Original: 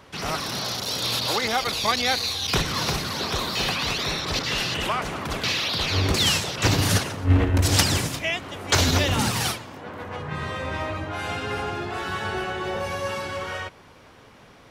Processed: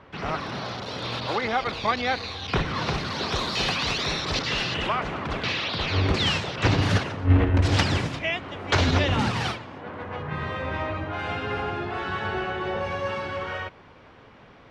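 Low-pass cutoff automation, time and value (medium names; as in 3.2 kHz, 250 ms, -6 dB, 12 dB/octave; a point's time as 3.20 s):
2.67 s 2.4 kHz
3.48 s 6.1 kHz
4.23 s 6.1 kHz
5.00 s 3.2 kHz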